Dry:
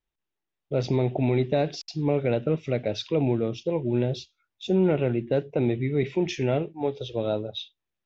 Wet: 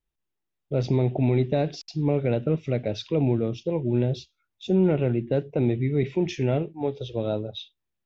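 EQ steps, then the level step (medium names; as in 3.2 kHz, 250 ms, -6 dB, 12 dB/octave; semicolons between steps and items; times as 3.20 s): bass shelf 300 Hz +6.5 dB; -2.5 dB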